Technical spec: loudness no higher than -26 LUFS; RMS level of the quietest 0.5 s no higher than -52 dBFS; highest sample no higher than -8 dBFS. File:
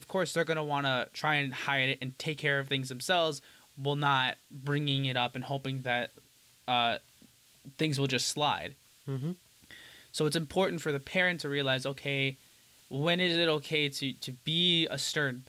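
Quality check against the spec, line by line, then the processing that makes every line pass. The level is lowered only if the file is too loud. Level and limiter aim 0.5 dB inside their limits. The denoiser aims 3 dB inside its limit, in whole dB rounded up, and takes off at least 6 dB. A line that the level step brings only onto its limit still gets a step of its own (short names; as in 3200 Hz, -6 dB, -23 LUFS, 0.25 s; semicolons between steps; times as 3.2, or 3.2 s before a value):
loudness -30.5 LUFS: OK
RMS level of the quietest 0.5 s -61 dBFS: OK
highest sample -15.5 dBFS: OK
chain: none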